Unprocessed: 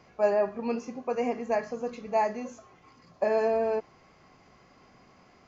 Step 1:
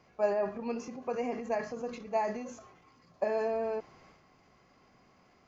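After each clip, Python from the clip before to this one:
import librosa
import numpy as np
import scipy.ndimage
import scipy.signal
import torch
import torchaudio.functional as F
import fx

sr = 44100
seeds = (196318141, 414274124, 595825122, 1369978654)

y = fx.transient(x, sr, attack_db=3, sustain_db=7)
y = y * librosa.db_to_amplitude(-6.5)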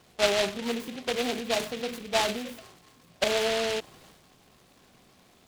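y = fx.noise_mod_delay(x, sr, seeds[0], noise_hz=2600.0, depth_ms=0.16)
y = y * librosa.db_to_amplitude(4.5)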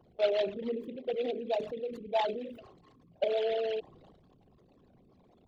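y = fx.envelope_sharpen(x, sr, power=3.0)
y = y * librosa.db_to_amplitude(-3.5)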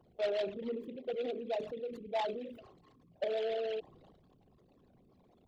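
y = 10.0 ** (-23.5 / 20.0) * np.tanh(x / 10.0 ** (-23.5 / 20.0))
y = y * librosa.db_to_amplitude(-3.0)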